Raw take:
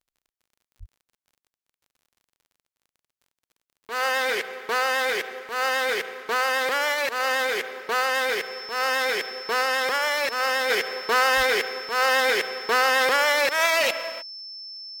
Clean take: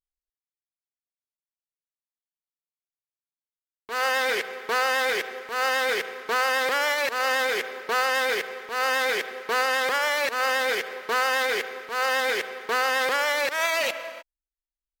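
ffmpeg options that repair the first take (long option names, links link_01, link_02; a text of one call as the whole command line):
ffmpeg -i in.wav -filter_complex "[0:a]adeclick=threshold=4,bandreject=frequency=5300:width=30,asplit=3[link_01][link_02][link_03];[link_01]afade=type=out:start_time=0.79:duration=0.02[link_04];[link_02]highpass=frequency=140:width=0.5412,highpass=frequency=140:width=1.3066,afade=type=in:start_time=0.79:duration=0.02,afade=type=out:start_time=0.91:duration=0.02[link_05];[link_03]afade=type=in:start_time=0.91:duration=0.02[link_06];[link_04][link_05][link_06]amix=inputs=3:normalize=0,asplit=3[link_07][link_08][link_09];[link_07]afade=type=out:start_time=11.36:duration=0.02[link_10];[link_08]highpass=frequency=140:width=0.5412,highpass=frequency=140:width=1.3066,afade=type=in:start_time=11.36:duration=0.02,afade=type=out:start_time=11.48:duration=0.02[link_11];[link_09]afade=type=in:start_time=11.48:duration=0.02[link_12];[link_10][link_11][link_12]amix=inputs=3:normalize=0,asetnsamples=nb_out_samples=441:pad=0,asendcmd='10.7 volume volume -3.5dB',volume=0dB" out.wav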